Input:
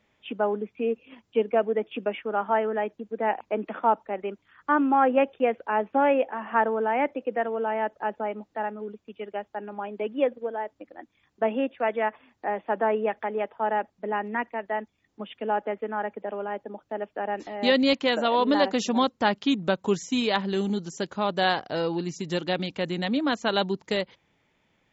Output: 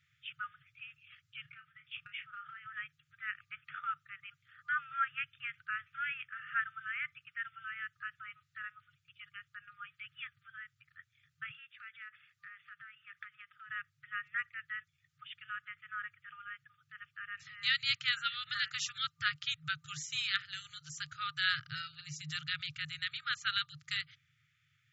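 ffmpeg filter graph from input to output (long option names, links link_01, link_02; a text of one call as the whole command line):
ffmpeg -i in.wav -filter_complex "[0:a]asettb=1/sr,asplit=3[link_01][link_02][link_03];[link_01]atrim=end=1.424[link_04];[link_02]atrim=start=1.42:end=2.66,asetpts=PTS-STARTPTS,afade=type=in:duration=0.004:curve=qsin,afade=type=out:start_time=1.236:duration=0.004:curve=qsin,lowpass=5500,acompressor=threshold=-30dB:ratio=16:attack=3.2:release=140:knee=1:detection=peak,asplit=2[link_05][link_06];[link_06]adelay=32,volume=-9dB[link_07];[link_05][link_07]amix=inputs=2:normalize=0,atrim=end_sample=54684[link_08];[link_03]atrim=start=2.656[link_09];[link_04][link_08]acrossfade=duration=0.004:curve1=hsin:curve2=qsin[link_10];[link_10][link_09]acrossfade=duration=0.004:curve1=qsin:curve2=hsin,asettb=1/sr,asplit=3[link_11][link_12][link_13];[link_11]atrim=end=11.504[link_14];[link_12]atrim=start=11.5:end=13.7,asetpts=PTS-STARTPTS,afade=type=in:duration=0.004:curve=qsin,afade=type=out:start_time=2.196:duration=0.004:curve=qsin,bass=frequency=250:gain=-8,treble=frequency=4000:gain=0,acompressor=threshold=-33dB:ratio=5:attack=3.2:release=140:knee=1:detection=peak[link_15];[link_13]atrim=start=13.696[link_16];[link_14][link_15]acrossfade=duration=0.004:curve1=hsin:curve2=qsin[link_17];[link_17][link_16]acrossfade=duration=0.004:curve1=qsin:curve2=hsin,afftfilt=real='re*(1-between(b*sr/4096,160,1200))':imag='im*(1-between(b*sr/4096,160,1200))':win_size=4096:overlap=0.75,highpass=frequency=100:width=0.5412,highpass=frequency=100:width=1.3066,bass=frequency=250:gain=7,treble=frequency=4000:gain=0,volume=-3.5dB" out.wav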